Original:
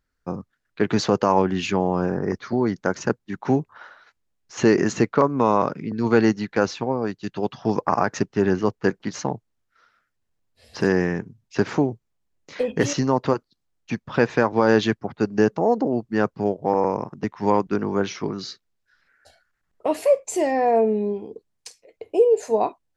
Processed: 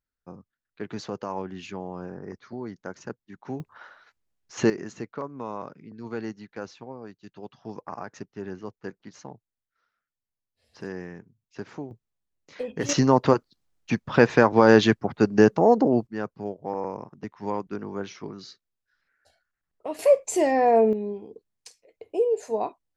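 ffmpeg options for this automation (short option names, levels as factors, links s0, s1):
-af "asetnsamples=n=441:p=0,asendcmd='3.6 volume volume -3.5dB;4.7 volume volume -16dB;11.91 volume volume -8.5dB;12.89 volume volume 2dB;16.07 volume volume -10dB;19.99 volume volume 0dB;20.93 volume volume -6.5dB',volume=0.2"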